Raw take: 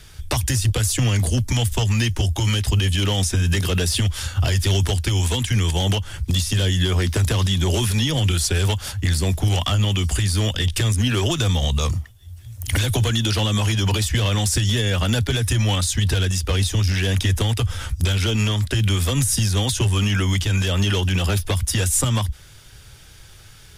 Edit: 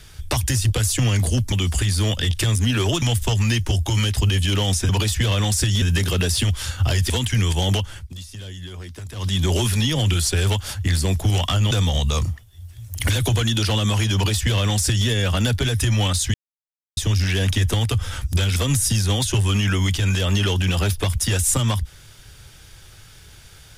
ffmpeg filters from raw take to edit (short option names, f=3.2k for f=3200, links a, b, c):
-filter_complex "[0:a]asplit=12[a][b][c][d][e][f][g][h][i][j][k][l];[a]atrim=end=1.522[m];[b]atrim=start=9.888:end=11.392[n];[c]atrim=start=1.518:end=3.392[o];[d]atrim=start=13.828:end=14.762[p];[e]atrim=start=3.388:end=4.672[q];[f]atrim=start=5.278:end=6.27,asetpts=PTS-STARTPTS,afade=t=out:st=0.752:d=0.24:silence=0.16788[r];[g]atrim=start=6.27:end=7.32,asetpts=PTS-STARTPTS,volume=-15.5dB[s];[h]atrim=start=7.32:end=9.892,asetpts=PTS-STARTPTS,afade=t=in:d=0.24:silence=0.16788[t];[i]atrim=start=11.388:end=16.02,asetpts=PTS-STARTPTS,afade=t=out:st=4.628:d=0.004:c=hsin[u];[j]atrim=start=16.02:end=16.65,asetpts=PTS-STARTPTS,volume=0[v];[k]atrim=start=16.65:end=18.242,asetpts=PTS-STARTPTS,afade=t=in:d=0.004:c=hsin[w];[l]atrim=start=19.028[x];[m][n]acrossfade=d=0.004:c1=hsin:c2=hsin[y];[y][o]acrossfade=d=0.004:c1=hsin:c2=hsin[z];[z][p]acrossfade=d=0.004:c1=hsin:c2=hsin[aa];[aa][q]acrossfade=d=0.004:c1=hsin:c2=hsin[ab];[r][s][t]concat=n=3:v=0:a=1[ac];[ab][ac]acrossfade=d=0.004:c1=hsin:c2=hsin[ad];[u][v][w]concat=n=3:v=0:a=1[ae];[ad][ae]acrossfade=d=0.004:c1=hsin:c2=hsin[af];[af][x]acrossfade=d=0.004:c1=hsin:c2=hsin"